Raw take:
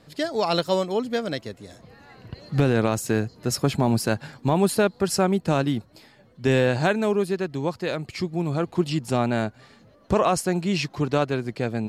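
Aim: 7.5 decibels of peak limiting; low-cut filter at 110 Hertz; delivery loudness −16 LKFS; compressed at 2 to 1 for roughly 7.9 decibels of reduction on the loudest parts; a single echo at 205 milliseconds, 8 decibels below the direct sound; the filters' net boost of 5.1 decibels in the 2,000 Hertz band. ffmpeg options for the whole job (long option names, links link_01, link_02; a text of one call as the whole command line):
ffmpeg -i in.wav -af "highpass=110,equalizer=frequency=2000:width_type=o:gain=7,acompressor=threshold=-29dB:ratio=2,alimiter=limit=-19dB:level=0:latency=1,aecho=1:1:205:0.398,volume=15dB" out.wav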